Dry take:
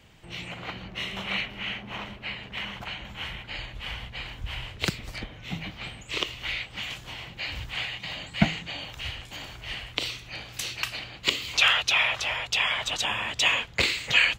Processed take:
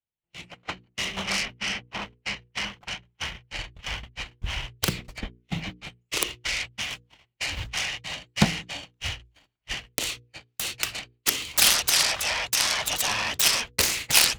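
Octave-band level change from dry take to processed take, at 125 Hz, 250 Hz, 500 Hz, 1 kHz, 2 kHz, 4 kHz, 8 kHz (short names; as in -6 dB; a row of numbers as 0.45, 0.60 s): +1.0, +1.0, +1.0, +0.5, -2.0, +1.5, +12.5 dB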